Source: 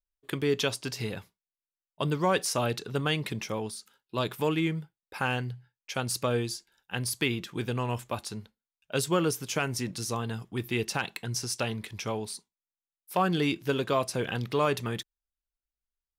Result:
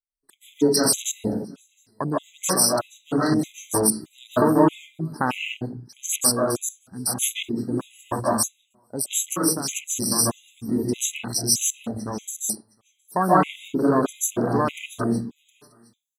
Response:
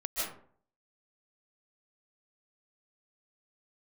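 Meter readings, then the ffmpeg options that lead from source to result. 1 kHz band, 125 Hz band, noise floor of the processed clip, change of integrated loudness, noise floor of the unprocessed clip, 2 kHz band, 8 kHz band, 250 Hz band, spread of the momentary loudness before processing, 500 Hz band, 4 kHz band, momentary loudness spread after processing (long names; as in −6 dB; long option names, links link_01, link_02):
+7.0 dB, +1.5 dB, −68 dBFS, +7.5 dB, below −85 dBFS, 0.0 dB, +14.5 dB, +9.0 dB, 11 LU, +5.5 dB, +5.0 dB, 12 LU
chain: -filter_complex "[0:a]equalizer=frequency=125:width_type=o:width=1:gain=-7,equalizer=frequency=250:width_type=o:width=1:gain=7,equalizer=frequency=500:width_type=o:width=1:gain=-6,equalizer=frequency=1000:width_type=o:width=1:gain=4,equalizer=frequency=2000:width_type=o:width=1:gain=-9,equalizer=frequency=8000:width_type=o:width=1:gain=10,aecho=1:1:715:0.075,asplit=2[link_01][link_02];[link_02]acompressor=threshold=-35dB:ratio=6,volume=0.5dB[link_03];[link_01][link_03]amix=inputs=2:normalize=0,highshelf=frequency=6400:gain=7[link_04];[1:a]atrim=start_sample=2205[link_05];[link_04][link_05]afir=irnorm=-1:irlink=0,afwtdn=0.0398,dynaudnorm=framelen=160:gausssize=7:maxgain=11.5dB,afftfilt=real='re*gt(sin(2*PI*1.6*pts/sr)*(1-2*mod(floor(b*sr/1024/2000),2)),0)':imag='im*gt(sin(2*PI*1.6*pts/sr)*(1-2*mod(floor(b*sr/1024/2000),2)),0)':win_size=1024:overlap=0.75,volume=-2.5dB"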